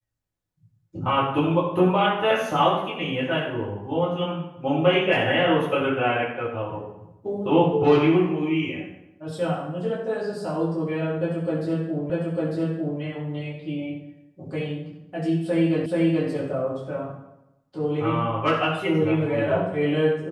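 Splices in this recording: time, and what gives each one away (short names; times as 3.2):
12.1 repeat of the last 0.9 s
15.86 repeat of the last 0.43 s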